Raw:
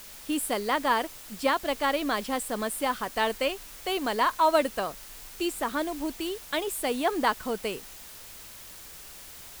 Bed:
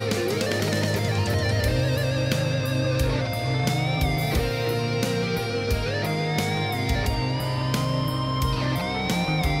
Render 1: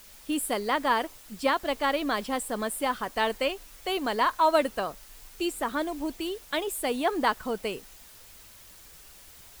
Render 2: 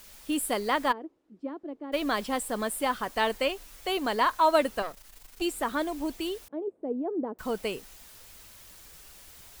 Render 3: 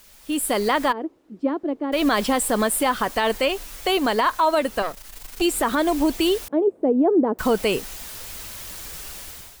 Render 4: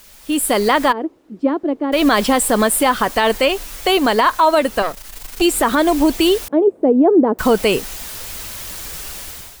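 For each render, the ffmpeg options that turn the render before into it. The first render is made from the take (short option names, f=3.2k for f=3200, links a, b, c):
-af "afftdn=nr=6:nf=-46"
-filter_complex "[0:a]asplit=3[a][b][c];[a]afade=t=out:st=0.91:d=0.02[d];[b]bandpass=f=320:t=q:w=3.7,afade=t=in:st=0.91:d=0.02,afade=t=out:st=1.92:d=0.02[e];[c]afade=t=in:st=1.92:d=0.02[f];[d][e][f]amix=inputs=3:normalize=0,asettb=1/sr,asplit=3[g][h][i];[g]atrim=end=4.824[j];[h]atrim=start=4.82:end=5.42,asetpts=PTS-STARTPTS,afade=t=in:d=0.004:c=qsin,afade=t=out:st=0.596:d=0.004:c=qsin,aeval=exprs='if(lt(val(0),0),0.251*val(0),val(0))':c=same[k];[i]atrim=start=5.416[l];[j][k]acrossfade=d=0.004:c1=hsin:c2=qsin[m];[m][l]acrossfade=d=0.004:c1=qsin:c2=hsin,asettb=1/sr,asplit=3[n][o][p];[n]atrim=end=6.484[q];[o]atrim=start=6.48:end=7.39,asetpts=PTS-STARTPTS,afade=t=in:d=0.004:c=qsin,afade=t=out:st=0.906:d=0.004:c=qsin,asuperpass=centerf=310:order=4:qfactor=1[r];[p]atrim=start=7.386[s];[q][r]acrossfade=d=0.004:c1=hsin:c2=qsin[t];[t][s]acrossfade=d=0.004:c1=qsin:c2=hsin"
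-af "dynaudnorm=f=190:g=5:m=14.5dB,alimiter=limit=-11dB:level=0:latency=1:release=86"
-af "volume=6dB"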